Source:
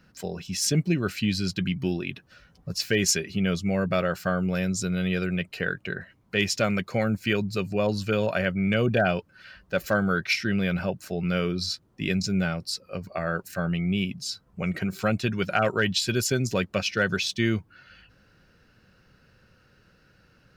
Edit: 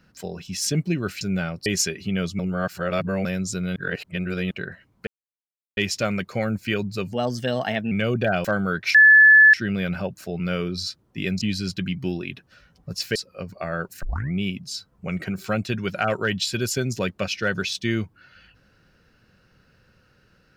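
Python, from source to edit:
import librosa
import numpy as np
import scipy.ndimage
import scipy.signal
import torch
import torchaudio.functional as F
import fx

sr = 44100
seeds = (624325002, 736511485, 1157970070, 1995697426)

y = fx.edit(x, sr, fx.swap(start_s=1.21, length_s=1.74, other_s=12.25, other_length_s=0.45),
    fx.reverse_span(start_s=3.68, length_s=0.86),
    fx.reverse_span(start_s=5.05, length_s=0.75),
    fx.insert_silence(at_s=6.36, length_s=0.7),
    fx.speed_span(start_s=7.71, length_s=0.93, speed=1.17),
    fx.cut(start_s=9.17, length_s=0.7),
    fx.insert_tone(at_s=10.37, length_s=0.59, hz=1730.0, db=-8.0),
    fx.tape_start(start_s=13.57, length_s=0.29), tone=tone)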